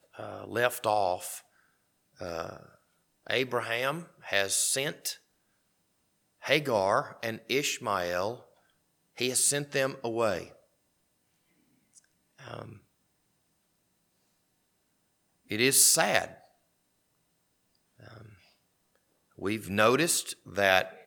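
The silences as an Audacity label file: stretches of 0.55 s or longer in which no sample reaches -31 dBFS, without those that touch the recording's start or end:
1.350000	2.210000	silence
2.570000	3.270000	silence
5.120000	6.450000	silence
8.340000	9.210000	silence
10.430000	12.480000	silence
12.620000	15.520000	silence
16.250000	19.420000	silence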